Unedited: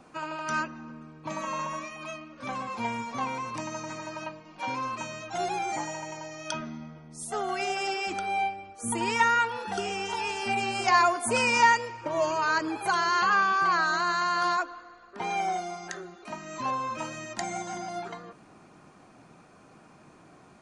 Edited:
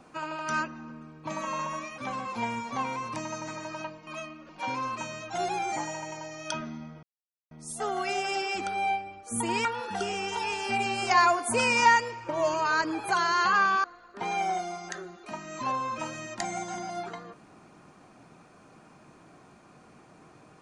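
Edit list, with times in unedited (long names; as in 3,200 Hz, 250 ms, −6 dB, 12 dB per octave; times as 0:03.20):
0:01.98–0:02.40: move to 0:04.49
0:07.03: splice in silence 0.48 s
0:09.17–0:09.42: remove
0:13.61–0:14.83: remove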